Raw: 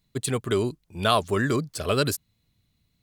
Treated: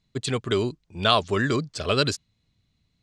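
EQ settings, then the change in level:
low-pass filter 7,300 Hz 24 dB per octave
dynamic equaliser 3,700 Hz, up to +5 dB, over −41 dBFS, Q 0.76
0.0 dB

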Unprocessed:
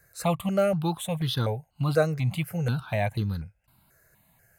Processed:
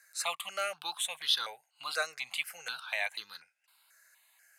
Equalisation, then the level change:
high-pass filter 1,200 Hz 12 dB per octave
high-frequency loss of the air 66 metres
spectral tilt +3.5 dB per octave
0.0 dB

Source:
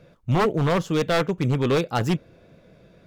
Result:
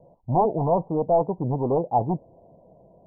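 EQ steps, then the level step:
Chebyshev low-pass filter 980 Hz, order 6
parametric band 760 Hz +12.5 dB 0.9 octaves
−4.0 dB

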